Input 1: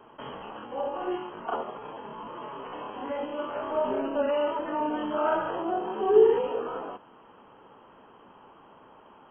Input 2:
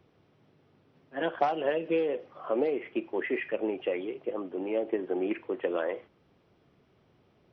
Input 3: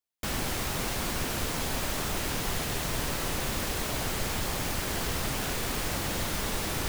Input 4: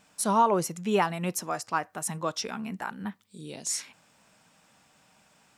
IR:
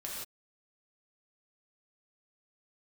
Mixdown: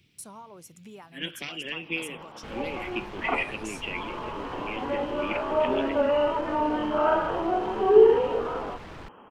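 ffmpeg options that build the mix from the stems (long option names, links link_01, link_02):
-filter_complex "[0:a]adelay=1800,volume=3dB[link_01];[1:a]firequalizer=gain_entry='entry(200,0);entry(680,-27);entry(2300,9)':delay=0.05:min_phase=1,aeval=exprs='0.119*(cos(1*acos(clip(val(0)/0.119,-1,1)))-cos(1*PI/2))+0.0015*(cos(4*acos(clip(val(0)/0.119,-1,1)))-cos(4*PI/2))':channel_layout=same,volume=1.5dB[link_02];[2:a]lowpass=2400,volume=32.5dB,asoftclip=hard,volume=-32.5dB,adelay=2200,volume=-7dB[link_03];[3:a]acompressor=threshold=-39dB:ratio=4,highshelf=frequency=10000:gain=10.5,agate=range=-15dB:threshold=-52dB:ratio=16:detection=peak,volume=-7.5dB,asplit=2[link_04][link_05];[link_05]apad=whole_len=489670[link_06];[link_01][link_06]sidechaincompress=threshold=-52dB:ratio=8:attack=7.4:release=240[link_07];[link_07][link_02][link_03][link_04]amix=inputs=4:normalize=0"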